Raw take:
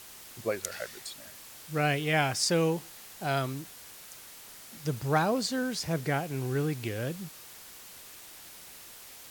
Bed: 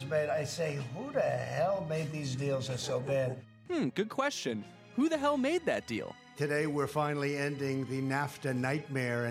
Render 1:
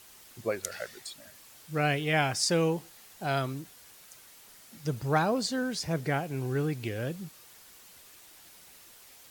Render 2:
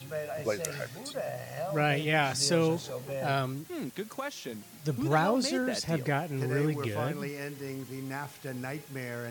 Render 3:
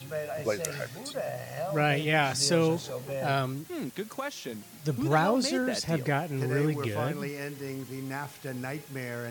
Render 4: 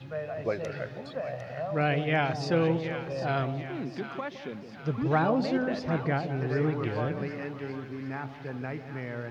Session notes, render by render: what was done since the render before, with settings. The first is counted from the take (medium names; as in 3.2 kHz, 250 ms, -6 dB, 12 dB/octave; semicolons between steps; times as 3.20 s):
noise reduction 6 dB, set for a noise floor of -49 dBFS
add bed -5 dB
trim +1.5 dB
distance through air 280 m; two-band feedback delay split 870 Hz, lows 165 ms, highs 753 ms, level -9.5 dB